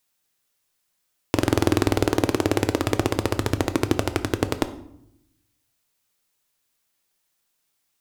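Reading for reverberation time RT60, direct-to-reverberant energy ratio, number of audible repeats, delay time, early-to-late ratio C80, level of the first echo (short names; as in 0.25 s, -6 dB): 0.75 s, 9.5 dB, none, none, 17.0 dB, none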